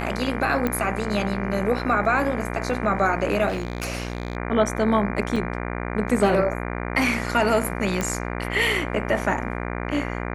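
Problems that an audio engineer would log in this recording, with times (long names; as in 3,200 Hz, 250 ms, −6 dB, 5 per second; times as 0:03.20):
mains buzz 60 Hz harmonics 40 −29 dBFS
0:00.67: click −11 dBFS
0:03.48–0:04.37: clipping −22 dBFS
0:05.36: drop-out 4.8 ms
0:08.01: click −11 dBFS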